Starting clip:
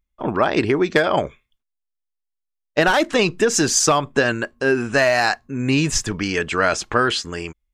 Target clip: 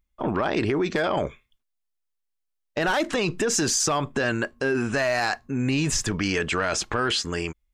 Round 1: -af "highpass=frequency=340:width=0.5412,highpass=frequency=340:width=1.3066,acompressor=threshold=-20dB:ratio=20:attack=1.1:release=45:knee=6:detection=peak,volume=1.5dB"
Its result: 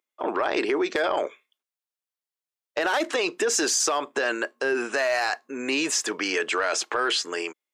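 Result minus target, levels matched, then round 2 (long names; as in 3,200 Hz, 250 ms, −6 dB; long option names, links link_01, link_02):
250 Hz band −4.0 dB
-af "acompressor=threshold=-20dB:ratio=20:attack=1.1:release=45:knee=6:detection=peak,volume=1.5dB"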